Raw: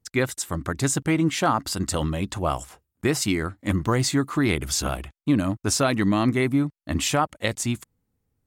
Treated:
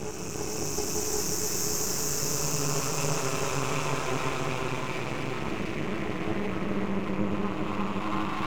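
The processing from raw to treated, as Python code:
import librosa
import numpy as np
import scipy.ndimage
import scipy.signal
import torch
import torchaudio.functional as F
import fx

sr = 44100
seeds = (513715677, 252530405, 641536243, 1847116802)

p1 = fx.ripple_eq(x, sr, per_octave=0.75, db=17)
p2 = fx.rev_spring(p1, sr, rt60_s=3.5, pass_ms=(33,), chirp_ms=70, drr_db=7.5)
p3 = fx.paulstretch(p2, sr, seeds[0], factor=16.0, window_s=0.25, from_s=5.63)
p4 = p3 + fx.echo_alternate(p3, sr, ms=355, hz=1100.0, feedback_pct=68, wet_db=-3.0, dry=0)
p5 = np.maximum(p4, 0.0)
y = p5 * 10.0 ** (-7.5 / 20.0)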